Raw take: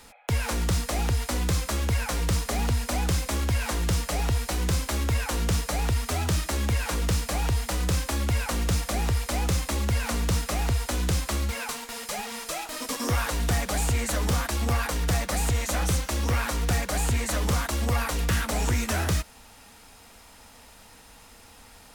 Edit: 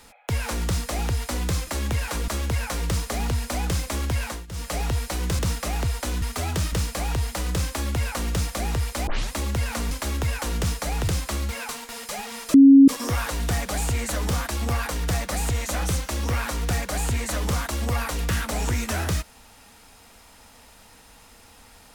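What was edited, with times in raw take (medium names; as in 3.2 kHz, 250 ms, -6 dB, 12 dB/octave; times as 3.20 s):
3.62–4.10 s: dip -21 dB, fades 0.24 s
4.78–5.95 s: swap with 10.25–11.08 s
6.45–7.06 s: move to 1.67 s
9.41 s: tape start 0.25 s
12.54–12.88 s: bleep 274 Hz -7 dBFS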